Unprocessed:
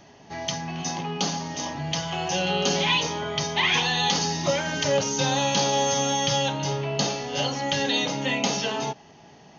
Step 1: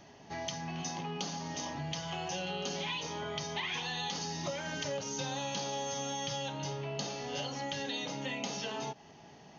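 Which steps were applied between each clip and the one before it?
compression 4:1, threshold -31 dBFS, peak gain reduction 11 dB; trim -4.5 dB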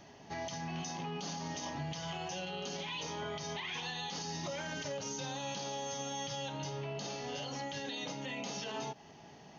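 peak limiter -31 dBFS, peak gain reduction 10.5 dB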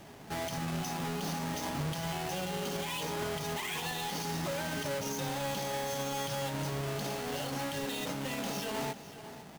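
square wave that keeps the level; delay 500 ms -14.5 dB

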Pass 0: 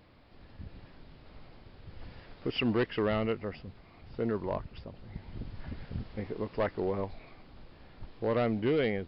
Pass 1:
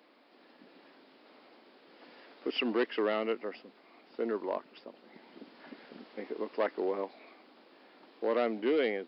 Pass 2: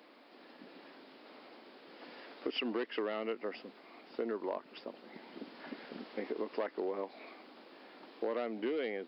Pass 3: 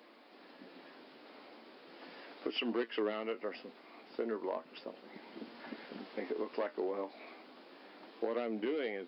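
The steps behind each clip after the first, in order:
steep high-pass 250 Hz 36 dB/octave
compression 5:1, threshold -37 dBFS, peak gain reduction 11.5 dB; trim +3.5 dB
flange 0.36 Hz, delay 8.3 ms, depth 5.9 ms, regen +63%; trim +4 dB

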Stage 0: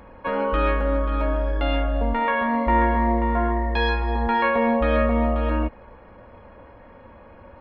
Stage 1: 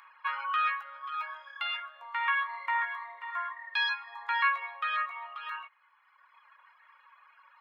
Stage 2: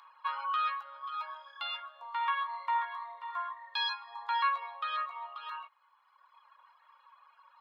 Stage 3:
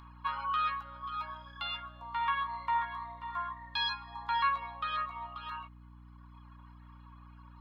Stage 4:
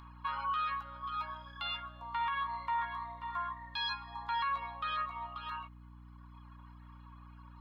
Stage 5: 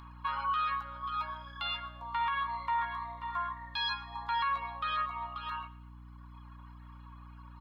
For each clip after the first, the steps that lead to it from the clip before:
reverb removal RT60 1.6 s; Chebyshev high-pass 1.1 kHz, order 4
ten-band graphic EQ 500 Hz +5 dB, 1 kHz +7 dB, 2 kHz -10 dB, 4 kHz +10 dB; trim -5 dB
hum 60 Hz, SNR 16 dB
peak limiter -27 dBFS, peak gain reduction 8 dB
feedback delay 115 ms, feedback 36%, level -19 dB; trim +2.5 dB

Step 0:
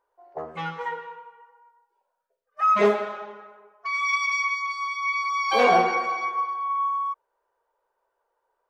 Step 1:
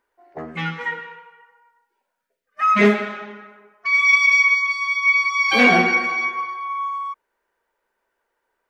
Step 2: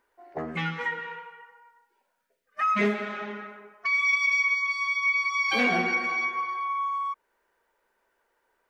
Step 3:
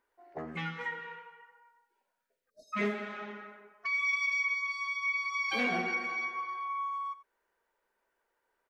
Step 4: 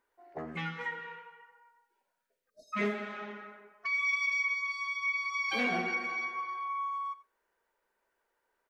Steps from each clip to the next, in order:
graphic EQ 250/500/1000/2000 Hz +11/-8/-8/+8 dB; trim +5.5 dB
compression 2:1, threshold -33 dBFS, peak gain reduction 13 dB; trim +2 dB
spectral selection erased 2.50–2.73 s, 680–3700 Hz; delay 89 ms -16.5 dB; trim -7 dB
reverberation RT60 0.25 s, pre-delay 5 ms, DRR 21 dB

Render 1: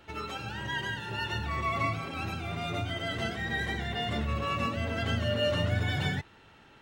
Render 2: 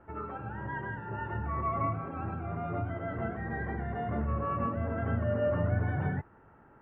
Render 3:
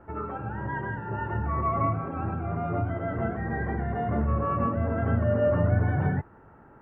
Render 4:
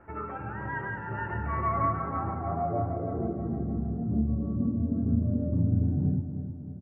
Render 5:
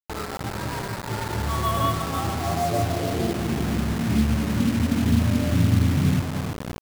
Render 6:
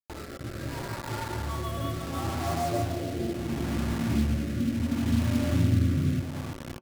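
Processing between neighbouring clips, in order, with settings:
inverse Chebyshev low-pass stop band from 4.9 kHz, stop band 60 dB
treble shelf 2.5 kHz -8 dB; trim +6 dB
low-pass sweep 2.3 kHz -> 250 Hz, 1.53–3.68 s; feedback delay 314 ms, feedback 53%, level -9.5 dB; trim -4 dB
median filter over 25 samples; word length cut 6-bit, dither none; trim +6 dB
rotary cabinet horn 0.7 Hz; on a send at -10.5 dB: reverberation, pre-delay 3 ms; on the sum: trim -4 dB

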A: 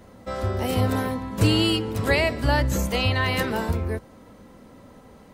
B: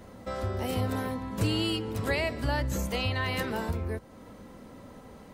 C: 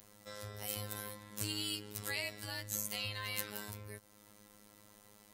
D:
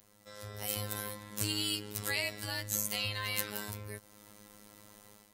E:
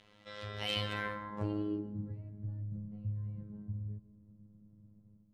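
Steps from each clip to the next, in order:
compression 1.5:1, threshold -39 dBFS, peak gain reduction 9 dB
robot voice 104 Hz; pre-emphasis filter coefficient 0.9; trim +4.5 dB
level rider gain up to 9 dB; trim -4 dB
low-pass sweep 3.1 kHz -> 150 Hz, 0.84–2.15 s; reverberation RT60 1.1 s, pre-delay 122 ms, DRR 12.5 dB; trim +1.5 dB

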